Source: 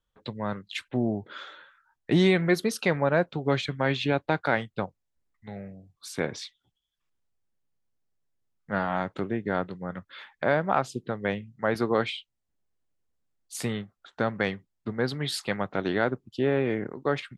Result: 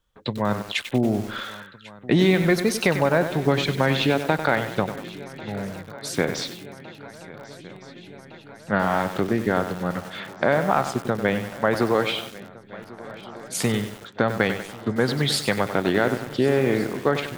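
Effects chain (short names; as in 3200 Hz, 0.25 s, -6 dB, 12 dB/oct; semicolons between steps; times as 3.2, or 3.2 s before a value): compressor 2.5:1, threshold -26 dBFS, peak gain reduction 7 dB; swung echo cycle 1.461 s, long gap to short 3:1, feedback 70%, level -20 dB; lo-fi delay 96 ms, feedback 55%, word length 7-bit, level -9 dB; gain +8.5 dB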